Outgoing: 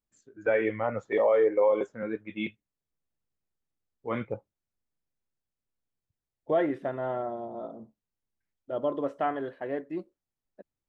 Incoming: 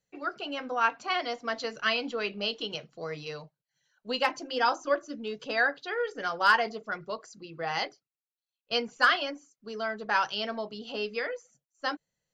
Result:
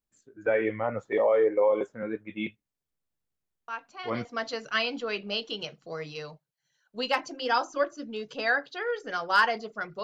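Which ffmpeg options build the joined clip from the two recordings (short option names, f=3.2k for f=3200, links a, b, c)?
-filter_complex "[1:a]asplit=2[a][b];[0:a]apad=whole_dur=10.03,atrim=end=10.03,atrim=end=4.252[c];[b]atrim=start=1.358:end=7.14[d];[a]atrim=start=0.79:end=1.36,asetpts=PTS-STARTPTS,volume=-11dB,afade=t=in:d=0.004:c=hsin,afade=t=out:st=0.566:d=0.004:c=hsin,adelay=3680[e];[c][d]acrossfade=d=0.004:c1=hsin:c2=hsin[f];[f][e]amix=inputs=2:normalize=0"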